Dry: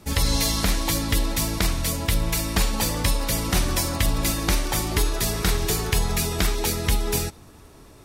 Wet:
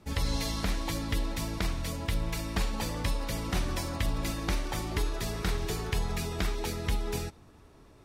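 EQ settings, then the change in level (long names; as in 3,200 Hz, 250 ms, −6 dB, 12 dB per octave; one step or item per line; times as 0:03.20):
high-shelf EQ 6,100 Hz −11.5 dB
−7.5 dB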